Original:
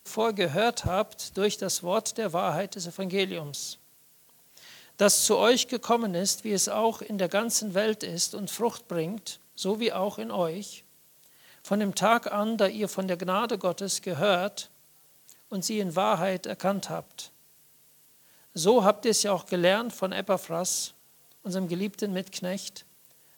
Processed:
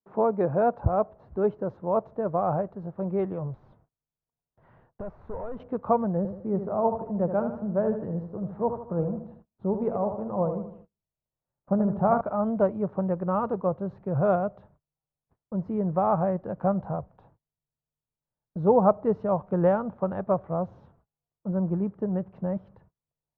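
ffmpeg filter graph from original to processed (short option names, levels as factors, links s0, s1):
-filter_complex "[0:a]asettb=1/sr,asplit=3[s0][s1][s2];[s0]atrim=end=3.534[s3];[s1]atrim=start=3.53:end=5.6,asetpts=PTS-STARTPTS,afade=t=in:d=0.004:c=qsin,afade=t=out:st=2.066:d=0.004:c=qsin,highshelf=f=5600:g=2.5,acompressor=threshold=0.0251:ratio=3:attack=3.2:release=140:knee=1:detection=peak,asoftclip=type=hard:threshold=0.0211[s4];[s2]atrim=start=5.596[s5];[s3][s4]acrossfade=d=0.004:c1=hsin:c2=qsin[s6];[s6][s5]acrossfade=d=0.004:c1=qsin:c2=hsin,asettb=1/sr,asplit=3[s7][s8][s9];[s7]atrim=end=6.174[s10];[s8]atrim=start=6.17:end=12.21,asetpts=PTS-STARTPTS,afade=t=in:d=0.004:c=qsin,afade=t=out:st=6.036:d=0.004:c=qsin,lowpass=f=1300:p=1,aecho=1:1:77|154|231|308|385:0.376|0.177|0.083|0.039|0.0183,atrim=end_sample=266364[s11];[s9]atrim=start=12.206[s12];[s10][s11]acrossfade=d=0.004:c1=hsin:c2=qsin[s13];[s13][s12]acrossfade=d=0.004:c1=qsin:c2=hsin,agate=range=0.0355:threshold=0.00282:ratio=16:detection=peak,lowpass=f=1100:w=0.5412,lowpass=f=1100:w=1.3066,asubboost=boost=7:cutoff=100,volume=1.41"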